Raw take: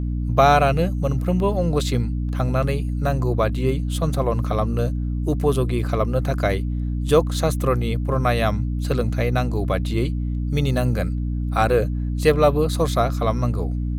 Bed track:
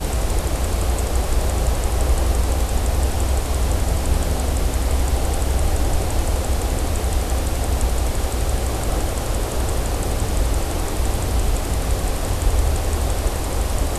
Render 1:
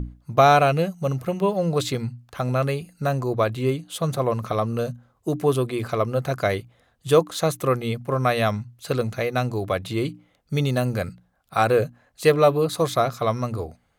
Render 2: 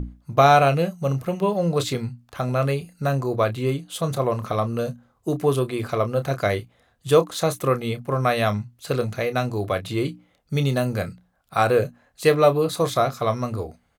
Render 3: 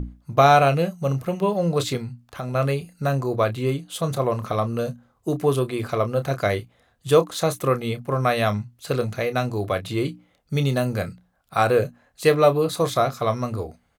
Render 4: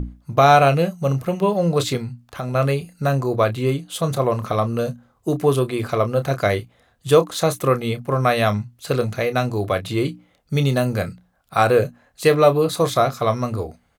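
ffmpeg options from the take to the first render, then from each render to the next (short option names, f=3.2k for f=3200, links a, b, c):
-af "bandreject=f=60:t=h:w=6,bandreject=f=120:t=h:w=6,bandreject=f=180:t=h:w=6,bandreject=f=240:t=h:w=6,bandreject=f=300:t=h:w=6"
-filter_complex "[0:a]asplit=2[a][b];[b]adelay=29,volume=-11dB[c];[a][c]amix=inputs=2:normalize=0"
-filter_complex "[0:a]asettb=1/sr,asplit=3[a][b][c];[a]atrim=end=1.974[d];[b]atrim=start=1.97:end=2.55,asetpts=PTS-STARTPTS,afade=t=in:d=0.004:c=qsin,afade=t=out:st=0.576:d=0.004:c=qsin,acompressor=threshold=-29dB:ratio=2:attack=3.2:release=140:knee=1:detection=peak[e];[c]atrim=start=2.546[f];[d][e]acrossfade=d=0.004:c1=hsin:c2=qsin[g];[g][f]acrossfade=d=0.004:c1=qsin:c2=hsin"
-af "volume=3dB,alimiter=limit=-3dB:level=0:latency=1"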